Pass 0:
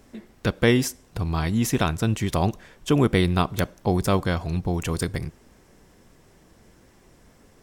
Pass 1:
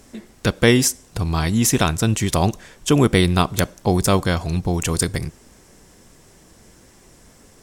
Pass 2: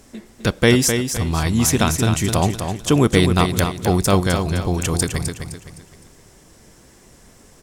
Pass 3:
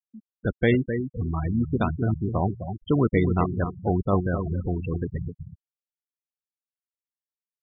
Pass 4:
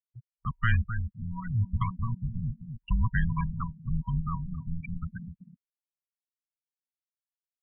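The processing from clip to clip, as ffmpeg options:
ffmpeg -i in.wav -af "equalizer=frequency=8000:width_type=o:width=1.6:gain=8.5,volume=4dB" out.wav
ffmpeg -i in.wav -af "aecho=1:1:257|514|771|1028:0.447|0.161|0.0579|0.0208" out.wav
ffmpeg -i in.wav -af "lowpass=3200,afftfilt=real='re*gte(hypot(re,im),0.2)':imag='im*gte(hypot(re,im),0.2)':win_size=1024:overlap=0.75,volume=-6dB" out.wav
ffmpeg -i in.wav -af "afftfilt=real='re*(1-between(b*sr/4096,370,1300))':imag='im*(1-between(b*sr/4096,370,1300))':win_size=4096:overlap=0.75,agate=range=-20dB:threshold=-43dB:ratio=16:detection=peak,highpass=frequency=190:width_type=q:width=0.5412,highpass=frequency=190:width_type=q:width=1.307,lowpass=frequency=3100:width_type=q:width=0.5176,lowpass=frequency=3100:width_type=q:width=0.7071,lowpass=frequency=3100:width_type=q:width=1.932,afreqshift=-340" out.wav

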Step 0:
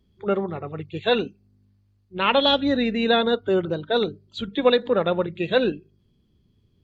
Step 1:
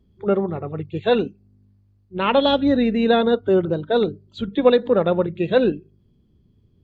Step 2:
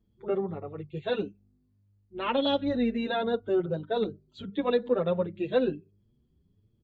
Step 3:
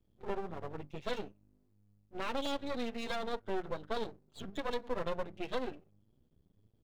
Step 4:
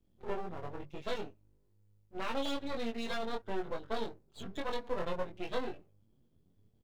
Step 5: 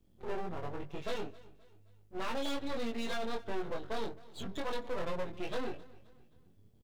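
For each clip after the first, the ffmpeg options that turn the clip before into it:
ffmpeg -i in.wav -af "tiltshelf=frequency=1200:gain=5" out.wav
ffmpeg -i in.wav -filter_complex "[0:a]asplit=2[link_01][link_02];[link_02]adelay=6.7,afreqshift=1.5[link_03];[link_01][link_03]amix=inputs=2:normalize=1,volume=-6.5dB" out.wav
ffmpeg -i in.wav -filter_complex "[0:a]acrossover=split=520[link_01][link_02];[link_01]acompressor=threshold=-39dB:ratio=6[link_03];[link_02]alimiter=level_in=3dB:limit=-24dB:level=0:latency=1:release=215,volume=-3dB[link_04];[link_03][link_04]amix=inputs=2:normalize=0,aeval=exprs='max(val(0),0)':channel_layout=same,volume=1.5dB" out.wav
ffmpeg -i in.wav -filter_complex "[0:a]asplit=2[link_01][link_02];[link_02]adelay=22,volume=-3dB[link_03];[link_01][link_03]amix=inputs=2:normalize=0,volume=-1.5dB" out.wav
ffmpeg -i in.wav -af "aeval=exprs='(tanh(22.4*val(0)+0.75)-tanh(0.75))/22.4':channel_layout=same,aecho=1:1:263|526|789:0.0891|0.0374|0.0157,volume=9.5dB" out.wav

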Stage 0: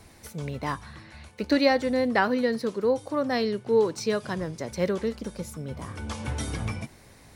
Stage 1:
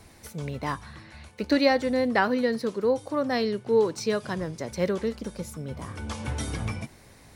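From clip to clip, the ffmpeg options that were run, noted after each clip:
ffmpeg -i in.wav -af anull out.wav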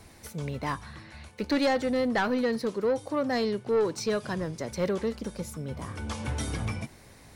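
ffmpeg -i in.wav -af "asoftclip=type=tanh:threshold=-19.5dB" out.wav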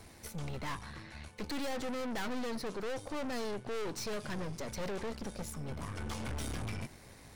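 ffmpeg -i in.wav -af "aeval=exprs='(tanh(79.4*val(0)+0.7)-tanh(0.7))/79.4':channel_layout=same,volume=1.5dB" out.wav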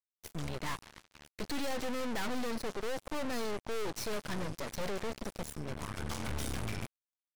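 ffmpeg -i in.wav -af "acrusher=bits=5:mix=0:aa=0.5" out.wav

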